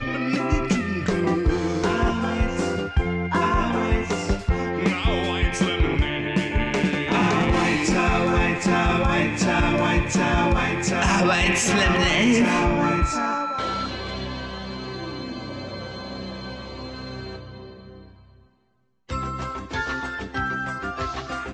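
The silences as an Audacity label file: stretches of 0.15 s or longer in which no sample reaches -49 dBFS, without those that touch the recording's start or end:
18.450000	19.090000	silence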